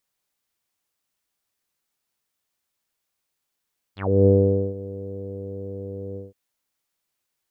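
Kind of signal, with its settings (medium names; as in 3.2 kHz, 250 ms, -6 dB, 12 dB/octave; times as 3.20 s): synth note saw G2 24 dB/octave, low-pass 470 Hz, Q 7.8, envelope 3.5 oct, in 0.12 s, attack 299 ms, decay 0.48 s, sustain -19 dB, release 0.17 s, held 2.20 s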